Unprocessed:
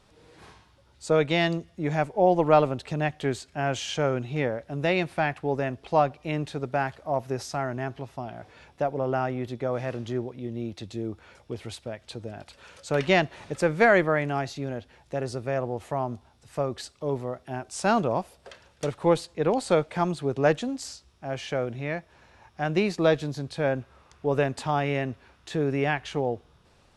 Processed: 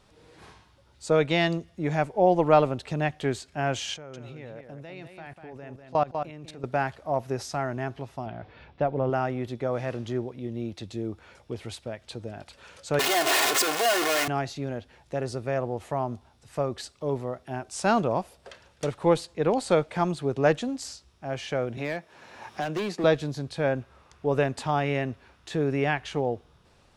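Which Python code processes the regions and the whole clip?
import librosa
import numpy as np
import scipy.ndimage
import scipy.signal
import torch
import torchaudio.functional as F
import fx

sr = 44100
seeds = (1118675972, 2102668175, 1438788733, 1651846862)

y = fx.chain(x, sr, fx.level_steps(step_db=21),
    fx.echo_single(ms=196, db=-7.0), at=(3.94, 6.64))
y = fx.chain(y, sr, fx.lowpass(hz=4200.0, slope=24),
    fx.low_shelf(hz=200.0, db=6.0), at=(8.26, 9.1))
y = fx.chain(y, sr, fx.clip_1bit(),
    fx.highpass(hz=450.0, slope=12),
    fx.comb(ms=2.8, depth=0.65), at=(12.99, 14.28))
y = fx.chain(y, sr, fx.highpass(hz=190.0, slope=12),
    fx.clip_hard(threshold_db=-24.5),
    fx.band_squash(depth_pct=70), at=(21.77, 23.04))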